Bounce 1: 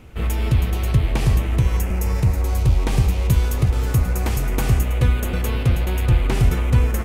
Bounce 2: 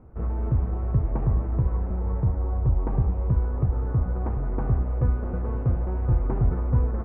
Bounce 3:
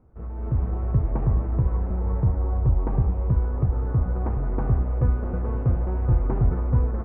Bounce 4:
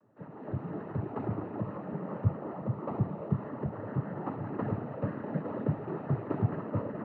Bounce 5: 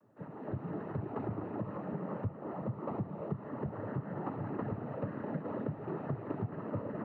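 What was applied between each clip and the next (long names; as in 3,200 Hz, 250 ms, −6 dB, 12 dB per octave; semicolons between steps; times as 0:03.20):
low-pass filter 1,200 Hz 24 dB per octave; level −5.5 dB
automatic gain control gain up to 11.5 dB; level −8 dB
high-pass filter 140 Hz 24 dB per octave; cochlear-implant simulation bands 12; level −2 dB
downward compressor 6 to 1, threshold −33 dBFS, peak gain reduction 12.5 dB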